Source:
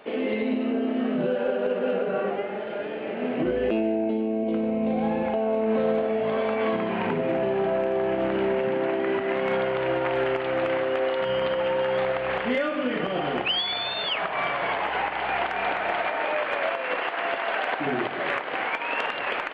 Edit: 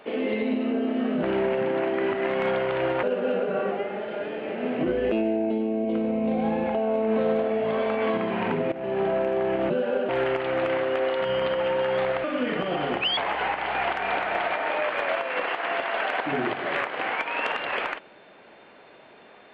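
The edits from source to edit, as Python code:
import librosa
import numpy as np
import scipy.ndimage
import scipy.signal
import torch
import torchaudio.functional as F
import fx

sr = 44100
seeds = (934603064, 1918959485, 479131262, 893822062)

y = fx.edit(x, sr, fx.swap(start_s=1.23, length_s=0.39, other_s=8.29, other_length_s=1.8),
    fx.fade_in_from(start_s=7.31, length_s=0.28, floor_db=-16.0),
    fx.cut(start_s=12.24, length_s=0.44),
    fx.cut(start_s=13.61, length_s=1.1), tone=tone)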